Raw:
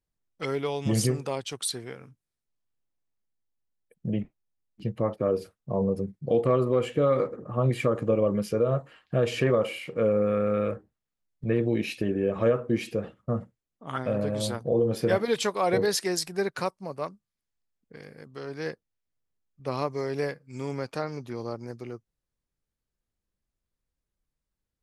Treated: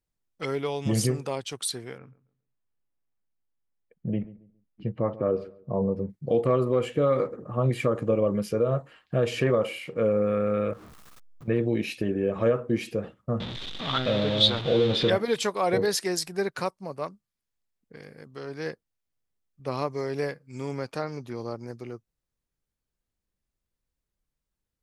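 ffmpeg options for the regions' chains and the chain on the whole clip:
-filter_complex "[0:a]asettb=1/sr,asplit=3[s0][s1][s2];[s0]atrim=end=1.984[s3];[s1]atrim=start=1.98:end=6.1,asetpts=PTS-STARTPTS,afade=t=in:d=0.004:c=qsin,afade=t=out:st=4.116:d=0.004:c=qsin,lowpass=2500,asplit=2[s4][s5];[s5]adelay=137,lowpass=f=1300:p=1,volume=0.133,asplit=2[s6][s7];[s7]adelay=137,lowpass=f=1300:p=1,volume=0.29,asplit=2[s8][s9];[s9]adelay=137,lowpass=f=1300:p=1,volume=0.29[s10];[s4][s6][s8][s10]amix=inputs=4:normalize=0,atrim=end_sample=181692[s11];[s2]atrim=start=6.096[s12];[s3][s11]acrossfade=d=0.004:c1=hsin:c2=qsin[s13];[s13][s12]acrossfade=d=0.004:c1=qsin:c2=hsin,asettb=1/sr,asplit=3[s14][s15][s16];[s14]atrim=end=10.734[s17];[s15]atrim=start=10.73:end=11.48,asetpts=PTS-STARTPTS,afade=t=in:d=0.004:c=qsin,afade=t=out:st=0.746:d=0.004:c=qsin,aeval=exprs='val(0)+0.5*0.00708*sgn(val(0))':c=same,acompressor=threshold=0.00708:ratio=6:attack=3.2:release=140:knee=1:detection=peak,equalizer=f=1200:t=o:w=0.43:g=10[s18];[s16]atrim=start=11.476[s19];[s17][s18]acrossfade=d=0.004:c1=hsin:c2=qsin[s20];[s20][s19]acrossfade=d=0.004:c1=qsin:c2=hsin,asettb=1/sr,asplit=3[s21][s22][s23];[s21]atrim=end=13.404[s24];[s22]atrim=start=13.4:end=15.1,asetpts=PTS-STARTPTS,afade=t=in:d=0.004:c=qsin,afade=t=out:st=1.696:d=0.004:c=qsin,aeval=exprs='val(0)+0.5*0.0299*sgn(val(0))':c=same,lowpass=f=3600:t=q:w=9.3[s25];[s23]atrim=start=15.096[s26];[s24][s25]acrossfade=d=0.004:c1=hsin:c2=qsin[s27];[s27][s26]acrossfade=d=0.004:c1=qsin:c2=hsin"

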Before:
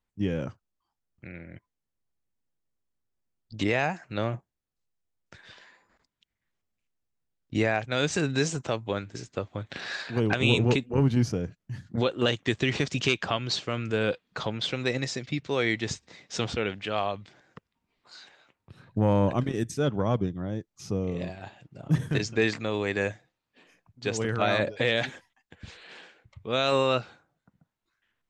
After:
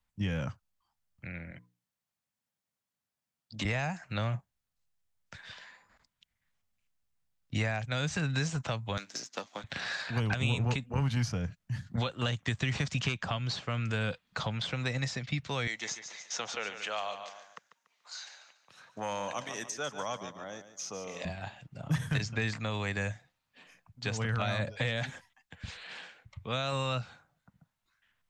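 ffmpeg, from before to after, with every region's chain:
-filter_complex "[0:a]asettb=1/sr,asplit=3[s0][s1][s2];[s0]atrim=end=1.514[s3];[s1]atrim=start=1.51:end=3.65,asetpts=PTS-STARTPTS,afade=t=in:d=0.004:c=qsin,afade=t=out:st=2.136:d=0.004:c=qsin,highpass=150,bandreject=f=60:t=h:w=6,bandreject=f=120:t=h:w=6,bandreject=f=180:t=h:w=6,bandreject=f=240:t=h:w=6,bandreject=f=300:t=h:w=6,bandreject=f=360:t=h:w=6,bandreject=f=420:t=h:w=6,bandreject=f=480:t=h:w=6[s4];[s2]atrim=start=3.646[s5];[s3][s4]acrossfade=d=0.004:c1=hsin:c2=qsin[s6];[s6][s5]acrossfade=d=0.004:c1=qsin:c2=hsin,asettb=1/sr,asplit=3[s7][s8][s9];[s7]atrim=end=8.974[s10];[s8]atrim=start=8.97:end=9.64,asetpts=PTS-STARTPTS,afade=t=in:d=0.004:c=qsin,afade=t=out:st=0.666:d=0.004:c=qsin,aeval=exprs='if(lt(val(0),0),0.447*val(0),val(0))':c=same,highpass=f=230:w=0.5412,highpass=f=230:w=1.3066,equalizer=f=5900:t=o:w=1:g=14.5[s11];[s9]atrim=start=9.636[s12];[s10][s11]acrossfade=d=0.004:c1=hsin:c2=qsin[s13];[s13][s12]acrossfade=d=0.004:c1=qsin:c2=hsin,asettb=1/sr,asplit=3[s14][s15][s16];[s14]atrim=end=15.674[s17];[s15]atrim=start=15.67:end=21.25,asetpts=PTS-STARTPTS,afade=t=in:d=0.004:c=qsin,afade=t=out:st=5.576:d=0.004:c=qsin,highpass=520,equalizer=f=6300:w=3.1:g=12,aecho=1:1:144|288|432:0.237|0.0806|0.0274,atrim=end_sample=246078[s18];[s16]atrim=start=21.246[s19];[s17][s18]acrossfade=d=0.004:c1=hsin:c2=qsin[s20];[s20][s19]acrossfade=d=0.004:c1=qsin:c2=hsin,equalizer=f=360:t=o:w=0.99:g=-11.5,acrossover=split=190|650|1900|5500[s21][s22][s23][s24][s25];[s21]acompressor=threshold=0.0251:ratio=4[s26];[s22]acompressor=threshold=0.00631:ratio=4[s27];[s23]acompressor=threshold=0.00891:ratio=4[s28];[s24]acompressor=threshold=0.00631:ratio=4[s29];[s25]acompressor=threshold=0.00282:ratio=4[s30];[s26][s27][s28][s29][s30]amix=inputs=5:normalize=0,volume=1.41"

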